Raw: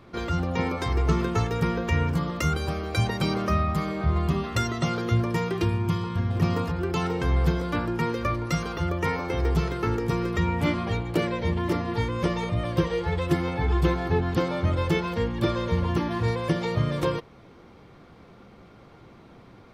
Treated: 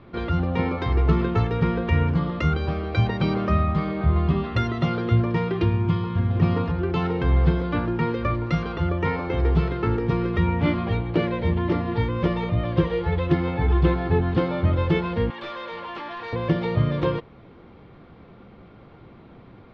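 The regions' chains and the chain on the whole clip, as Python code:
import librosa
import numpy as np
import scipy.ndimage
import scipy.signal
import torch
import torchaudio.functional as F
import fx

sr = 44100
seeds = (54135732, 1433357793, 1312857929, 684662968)

y = fx.chain(x, sr, fx.highpass(hz=760.0, slope=12),
    fx.clip_hard(threshold_db=-32.0),
    fx.env_flatten(amount_pct=50), at=(15.3, 16.33))
y = scipy.signal.sosfilt(scipy.signal.butter(4, 3900.0, 'lowpass', fs=sr, output='sos'), y)
y = fx.low_shelf(y, sr, hz=490.0, db=4.0)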